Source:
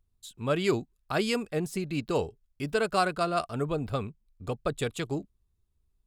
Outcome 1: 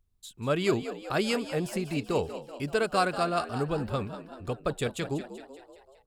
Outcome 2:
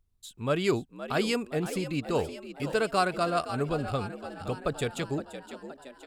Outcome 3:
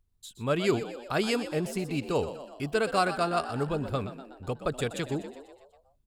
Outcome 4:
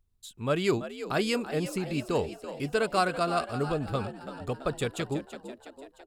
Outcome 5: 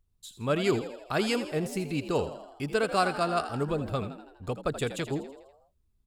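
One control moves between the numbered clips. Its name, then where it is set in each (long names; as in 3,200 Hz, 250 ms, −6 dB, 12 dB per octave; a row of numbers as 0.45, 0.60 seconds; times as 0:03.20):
echo with shifted repeats, delay time: 191, 518, 123, 333, 82 milliseconds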